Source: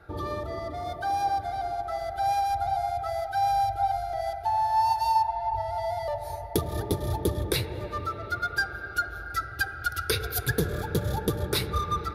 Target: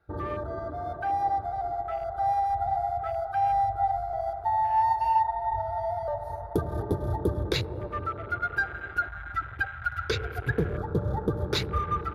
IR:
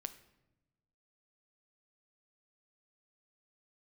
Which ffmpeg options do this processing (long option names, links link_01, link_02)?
-filter_complex "[0:a]asettb=1/sr,asplit=3[link_01][link_02][link_03];[link_01]atrim=end=9.064[link_04];[link_02]atrim=start=9.06:end=11.36,asetpts=PTS-STARTPTS,afade=type=in:duration=0.004:curve=qsin,afade=type=out:start_time=2.296:duration=0.004:curve=qsin,lowpass=frequency=3600:poles=1[link_05];[link_03]atrim=start=11.356[link_06];[link_04][link_05]acrossfade=duration=0.004:curve1=hsin:curve2=qsin[link_07];[link_07][link_06]acrossfade=duration=0.004:curve1=qsin:curve2=hsin,afwtdn=0.0126"